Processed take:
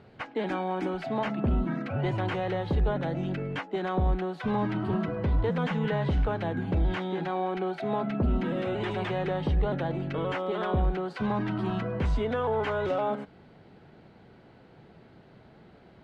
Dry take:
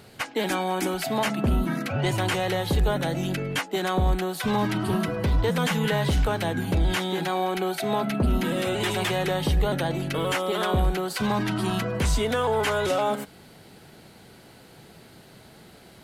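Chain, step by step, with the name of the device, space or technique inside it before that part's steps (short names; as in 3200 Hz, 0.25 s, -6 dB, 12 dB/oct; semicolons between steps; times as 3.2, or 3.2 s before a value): phone in a pocket (LPF 3700 Hz 12 dB/oct; high shelf 2400 Hz -11.5 dB); gain -3 dB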